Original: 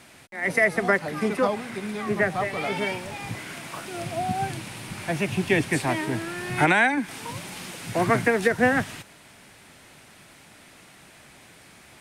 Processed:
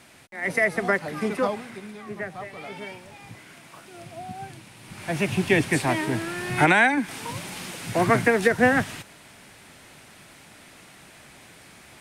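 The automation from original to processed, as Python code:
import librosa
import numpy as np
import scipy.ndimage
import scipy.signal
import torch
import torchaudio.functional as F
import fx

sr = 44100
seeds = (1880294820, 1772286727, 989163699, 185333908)

y = fx.gain(x, sr, db=fx.line((1.48, -1.5), (2.02, -10.0), (4.77, -10.0), (5.2, 1.5)))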